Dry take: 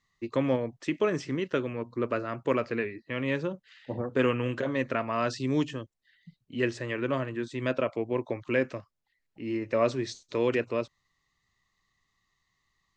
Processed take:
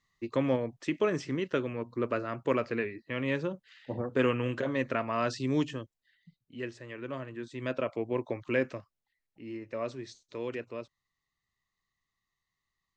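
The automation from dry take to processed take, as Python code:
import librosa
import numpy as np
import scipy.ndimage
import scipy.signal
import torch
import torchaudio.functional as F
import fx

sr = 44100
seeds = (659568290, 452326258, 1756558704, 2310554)

y = fx.gain(x, sr, db=fx.line((5.77, -1.5), (6.79, -11.5), (8.05, -2.0), (8.67, -2.0), (9.68, -10.0)))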